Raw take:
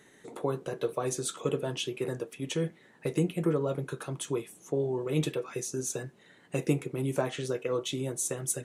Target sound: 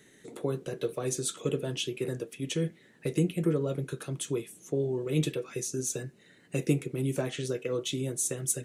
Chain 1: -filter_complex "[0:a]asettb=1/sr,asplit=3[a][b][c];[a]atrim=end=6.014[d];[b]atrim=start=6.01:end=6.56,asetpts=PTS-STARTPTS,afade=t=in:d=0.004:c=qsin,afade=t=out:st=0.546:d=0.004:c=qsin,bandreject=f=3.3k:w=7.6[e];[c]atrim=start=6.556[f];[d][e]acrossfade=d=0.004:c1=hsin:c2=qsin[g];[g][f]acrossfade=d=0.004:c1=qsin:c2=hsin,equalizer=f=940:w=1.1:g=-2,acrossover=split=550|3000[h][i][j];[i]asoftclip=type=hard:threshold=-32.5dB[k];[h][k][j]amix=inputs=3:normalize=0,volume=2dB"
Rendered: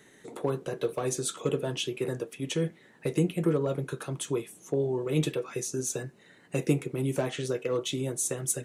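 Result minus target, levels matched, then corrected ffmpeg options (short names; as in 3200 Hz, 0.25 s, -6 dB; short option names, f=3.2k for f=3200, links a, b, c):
1000 Hz band +5.0 dB
-filter_complex "[0:a]asettb=1/sr,asplit=3[a][b][c];[a]atrim=end=6.014[d];[b]atrim=start=6.01:end=6.56,asetpts=PTS-STARTPTS,afade=t=in:d=0.004:c=qsin,afade=t=out:st=0.546:d=0.004:c=qsin,bandreject=f=3.3k:w=7.6[e];[c]atrim=start=6.556[f];[d][e]acrossfade=d=0.004:c1=hsin:c2=qsin[g];[g][f]acrossfade=d=0.004:c1=qsin:c2=hsin,equalizer=f=940:w=1.1:g=-10.5,acrossover=split=550|3000[h][i][j];[i]asoftclip=type=hard:threshold=-32.5dB[k];[h][k][j]amix=inputs=3:normalize=0,volume=2dB"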